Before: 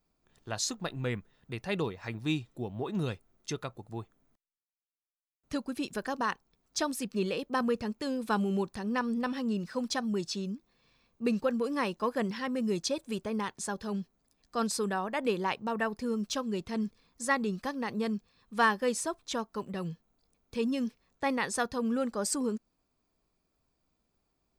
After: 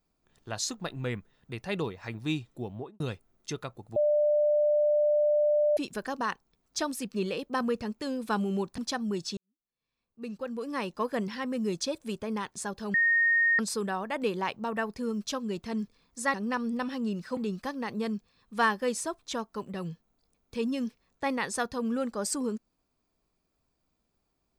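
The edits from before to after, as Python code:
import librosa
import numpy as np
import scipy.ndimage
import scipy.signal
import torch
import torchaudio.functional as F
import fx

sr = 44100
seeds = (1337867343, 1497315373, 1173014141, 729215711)

y = fx.studio_fade_out(x, sr, start_s=2.7, length_s=0.3)
y = fx.edit(y, sr, fx.bleep(start_s=3.96, length_s=1.81, hz=595.0, db=-21.0),
    fx.move(start_s=8.78, length_s=1.03, to_s=17.37),
    fx.fade_in_span(start_s=10.4, length_s=1.59, curve='qua'),
    fx.bleep(start_s=13.97, length_s=0.65, hz=1850.0, db=-20.5), tone=tone)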